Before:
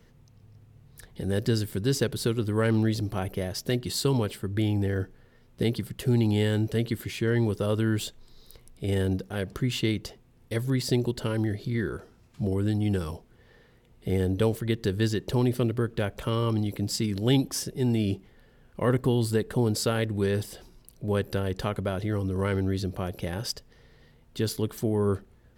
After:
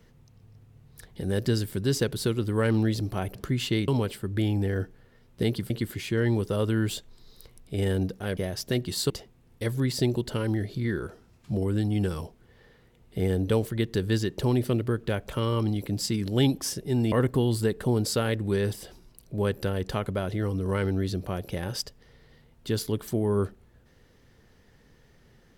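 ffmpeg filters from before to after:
-filter_complex "[0:a]asplit=7[s0][s1][s2][s3][s4][s5][s6];[s0]atrim=end=3.352[s7];[s1]atrim=start=9.468:end=10.002[s8];[s2]atrim=start=4.078:end=5.902[s9];[s3]atrim=start=6.798:end=9.472[s10];[s4]atrim=start=3.348:end=4.082[s11];[s5]atrim=start=9.998:end=18.022[s12];[s6]atrim=start=18.818[s13];[s7][s8]acrossfade=d=0.004:c1=hsin:c2=hsin[s14];[s14][s9]acrossfade=d=0.004:c1=hsin:c2=hsin[s15];[s15][s10]acrossfade=d=0.004:c1=hsin:c2=hsin[s16];[s16][s11]acrossfade=d=0.004:c1=hsin:c2=hsin[s17];[s17][s12]acrossfade=d=0.004:c1=hsin:c2=hsin[s18];[s18][s13]acrossfade=d=0.004:c1=hsin:c2=hsin"

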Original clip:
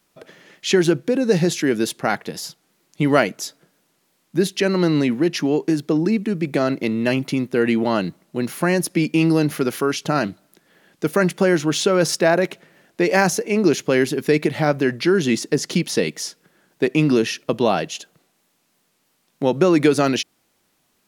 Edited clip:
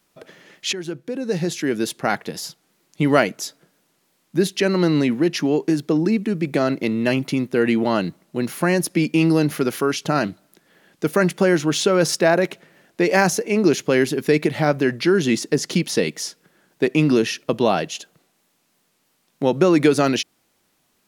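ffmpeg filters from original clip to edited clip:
-filter_complex "[0:a]asplit=2[s0][s1];[s0]atrim=end=0.73,asetpts=PTS-STARTPTS,afade=t=out:st=0.726:d=0.004:c=hsin:silence=0.149624[s2];[s1]atrim=start=0.73,asetpts=PTS-STARTPTS,afade=t=in:d=1.42:silence=0.149624[s3];[s2][s3]concat=n=2:v=0:a=1"

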